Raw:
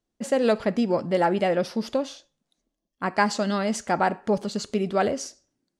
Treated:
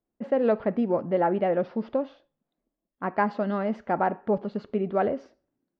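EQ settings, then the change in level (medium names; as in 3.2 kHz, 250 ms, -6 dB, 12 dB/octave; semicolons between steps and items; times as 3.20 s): low-pass 1.2 kHz 6 dB/octave; distance through air 340 m; bass shelf 190 Hz -7.5 dB; +1.5 dB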